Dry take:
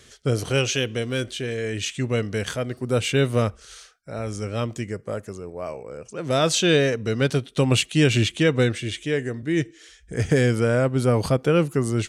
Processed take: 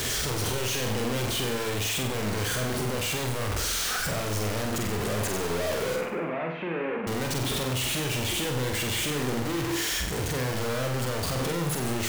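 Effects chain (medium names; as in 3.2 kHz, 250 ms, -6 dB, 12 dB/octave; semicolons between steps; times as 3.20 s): one-bit comparator; 5.96–7.07 s: Chebyshev band-pass 170–2500 Hz, order 4; on a send: flutter echo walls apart 8.1 m, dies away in 0.61 s; on the sum: trim -7 dB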